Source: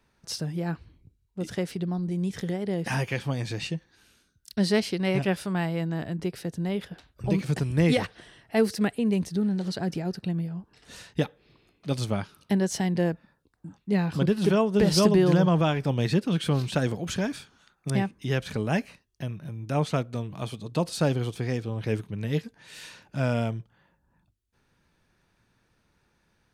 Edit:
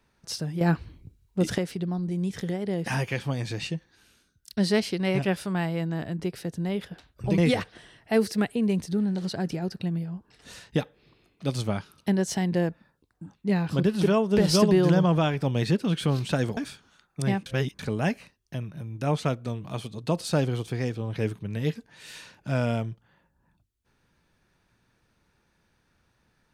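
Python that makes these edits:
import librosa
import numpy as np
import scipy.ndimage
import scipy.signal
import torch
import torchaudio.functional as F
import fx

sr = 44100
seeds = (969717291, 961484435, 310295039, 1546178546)

y = fx.edit(x, sr, fx.clip_gain(start_s=0.61, length_s=0.97, db=8.0),
    fx.cut(start_s=7.38, length_s=0.43),
    fx.cut(start_s=17.0, length_s=0.25),
    fx.reverse_span(start_s=18.14, length_s=0.33), tone=tone)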